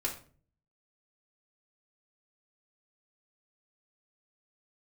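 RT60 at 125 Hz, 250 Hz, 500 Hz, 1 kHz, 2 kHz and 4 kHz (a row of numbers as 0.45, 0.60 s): 0.75, 0.60, 0.50, 0.40, 0.35, 0.30 s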